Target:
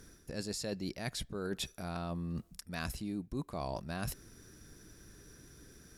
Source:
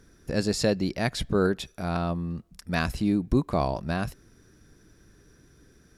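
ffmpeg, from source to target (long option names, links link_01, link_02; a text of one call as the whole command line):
ffmpeg -i in.wav -af "aemphasis=mode=production:type=cd,areverse,acompressor=threshold=-35dB:ratio=10,areverse" out.wav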